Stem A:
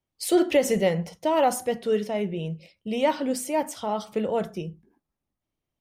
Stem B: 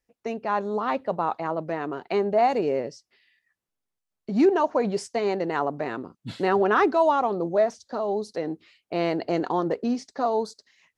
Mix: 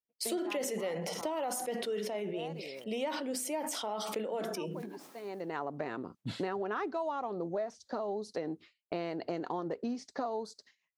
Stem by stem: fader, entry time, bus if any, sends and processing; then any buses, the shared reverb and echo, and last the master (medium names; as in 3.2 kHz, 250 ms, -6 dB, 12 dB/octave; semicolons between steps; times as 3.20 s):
-1.5 dB, 0.00 s, no send, high-pass 250 Hz 24 dB/octave; decay stretcher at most 48 dB/s
-0.5 dB, 0.00 s, no send, auto duck -21 dB, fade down 1.45 s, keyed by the first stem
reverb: none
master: high-pass 60 Hz; gate with hold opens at -43 dBFS; compression 6:1, threshold -33 dBFS, peak gain reduction 15.5 dB